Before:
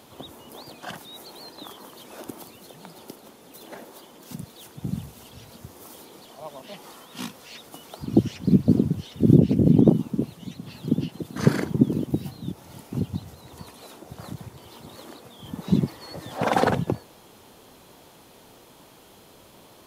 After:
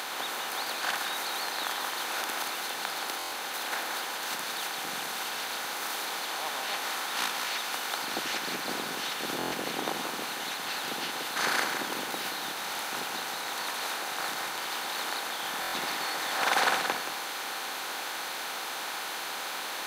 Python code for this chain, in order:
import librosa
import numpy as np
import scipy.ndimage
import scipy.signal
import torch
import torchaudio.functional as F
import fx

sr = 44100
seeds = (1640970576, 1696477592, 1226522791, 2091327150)

y = fx.bin_compress(x, sr, power=0.4)
y = scipy.signal.sosfilt(scipy.signal.butter(2, 1400.0, 'highpass', fs=sr, output='sos'), y)
y = y + 10.0 ** (-6.5 / 20.0) * np.pad(y, (int(176 * sr / 1000.0), 0))[:len(y)]
y = fx.buffer_glitch(y, sr, at_s=(3.18, 9.38, 15.6), block=1024, repeats=5)
y = y * librosa.db_to_amplitude(1.0)